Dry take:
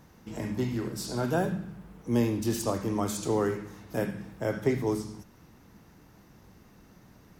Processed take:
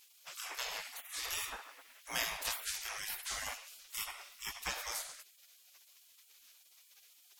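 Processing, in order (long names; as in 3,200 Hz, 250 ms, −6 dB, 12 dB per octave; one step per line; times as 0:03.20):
gate on every frequency bin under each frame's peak −30 dB weak
level +9.5 dB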